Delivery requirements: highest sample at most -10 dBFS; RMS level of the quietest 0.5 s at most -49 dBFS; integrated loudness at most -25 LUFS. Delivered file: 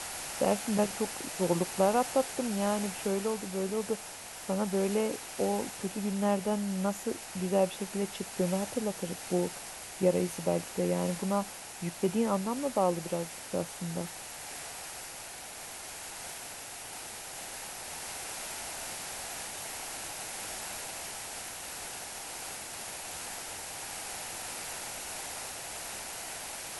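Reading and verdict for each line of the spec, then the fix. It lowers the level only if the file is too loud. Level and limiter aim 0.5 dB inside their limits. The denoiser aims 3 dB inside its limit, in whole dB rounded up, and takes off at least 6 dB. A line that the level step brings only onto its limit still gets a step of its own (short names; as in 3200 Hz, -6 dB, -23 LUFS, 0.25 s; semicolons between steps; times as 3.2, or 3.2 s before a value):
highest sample -12.5 dBFS: OK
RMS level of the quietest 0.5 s -44 dBFS: fail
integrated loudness -33.5 LUFS: OK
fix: denoiser 8 dB, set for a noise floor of -44 dBFS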